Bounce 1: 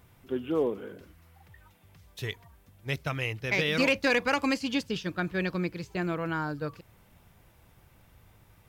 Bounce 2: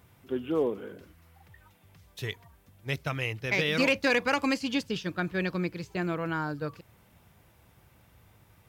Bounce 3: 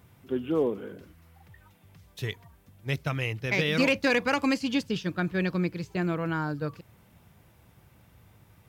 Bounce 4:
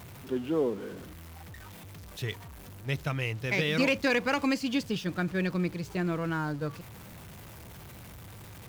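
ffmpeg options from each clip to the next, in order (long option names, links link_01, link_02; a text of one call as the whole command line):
ffmpeg -i in.wav -af "highpass=57" out.wav
ffmpeg -i in.wav -af "equalizer=frequency=160:width=0.64:gain=4" out.wav
ffmpeg -i in.wav -af "aeval=exprs='val(0)+0.5*0.01*sgn(val(0))':channel_layout=same,volume=-2.5dB" out.wav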